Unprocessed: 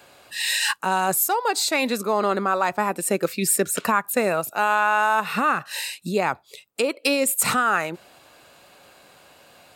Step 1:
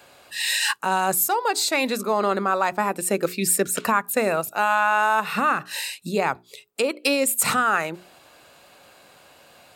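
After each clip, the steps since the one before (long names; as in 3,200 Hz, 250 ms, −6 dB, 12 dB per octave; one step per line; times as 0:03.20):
mains-hum notches 60/120/180/240/300/360/420 Hz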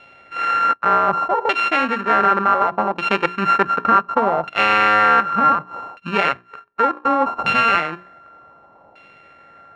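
samples sorted by size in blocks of 32 samples
auto-filter low-pass saw down 0.67 Hz 830–2,800 Hz
level +2.5 dB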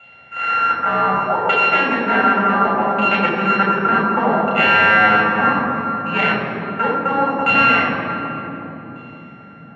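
convolution reverb RT60 3.5 s, pre-delay 3 ms, DRR −2 dB
level −11 dB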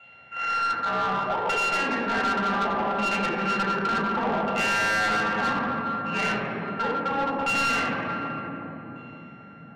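soft clipping −15 dBFS, distortion −10 dB
level −5.5 dB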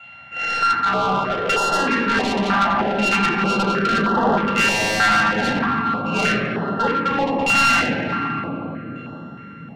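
notch on a step sequencer 3.2 Hz 440–2,300 Hz
level +9 dB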